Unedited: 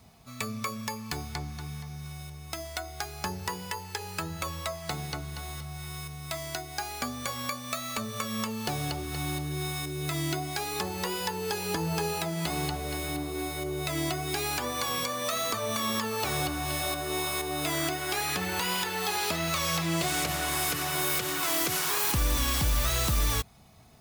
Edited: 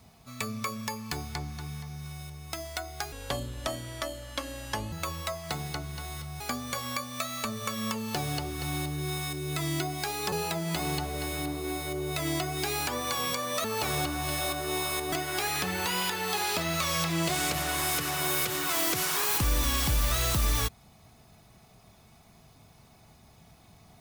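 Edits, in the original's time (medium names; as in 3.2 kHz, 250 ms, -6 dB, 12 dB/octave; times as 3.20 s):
3.12–4.31 s: speed 66%
5.79–6.93 s: delete
10.85–12.03 s: delete
15.35–16.06 s: delete
17.54–17.86 s: delete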